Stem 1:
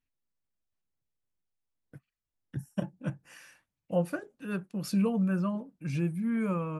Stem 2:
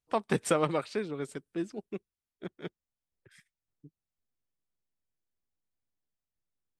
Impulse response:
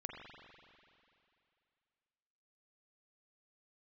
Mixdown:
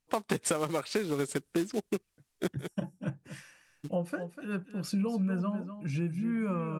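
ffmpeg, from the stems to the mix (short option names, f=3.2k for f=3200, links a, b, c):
-filter_complex "[0:a]volume=-0.5dB,asplit=3[a][b][c];[b]volume=-12dB[d];[1:a]acrusher=bits=4:mode=log:mix=0:aa=0.000001,highshelf=f=8k:g=7.5,dynaudnorm=f=110:g=3:m=10dB,volume=2dB[e];[c]apad=whole_len=299710[f];[e][f]sidechaincompress=threshold=-45dB:ratio=12:attack=21:release=451[g];[d]aecho=0:1:245:1[h];[a][g][h]amix=inputs=3:normalize=0,lowpass=11k,acompressor=threshold=-26dB:ratio=16"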